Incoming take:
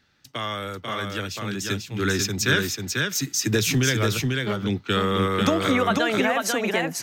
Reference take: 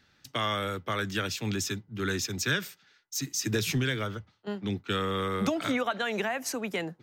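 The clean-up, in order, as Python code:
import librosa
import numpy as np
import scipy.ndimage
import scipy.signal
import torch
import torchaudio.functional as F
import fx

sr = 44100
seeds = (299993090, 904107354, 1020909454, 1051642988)

y = fx.fix_echo_inverse(x, sr, delay_ms=492, level_db=-3.5)
y = fx.fix_level(y, sr, at_s=1.68, step_db=-6.5)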